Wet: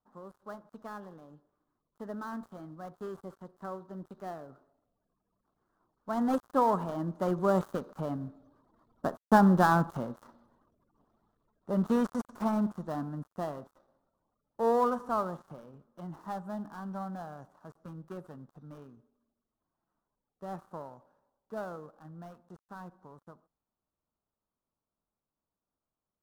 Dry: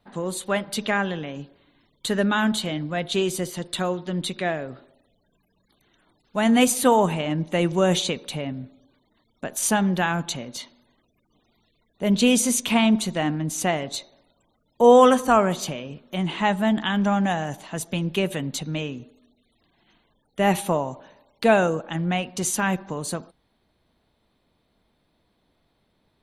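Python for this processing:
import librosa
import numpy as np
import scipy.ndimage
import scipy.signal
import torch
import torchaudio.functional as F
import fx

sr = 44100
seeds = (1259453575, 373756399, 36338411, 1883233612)

y = fx.dead_time(x, sr, dead_ms=0.16)
y = fx.doppler_pass(y, sr, speed_mps=15, closest_m=14.0, pass_at_s=9.44)
y = fx.high_shelf_res(y, sr, hz=1700.0, db=-11.0, q=3.0)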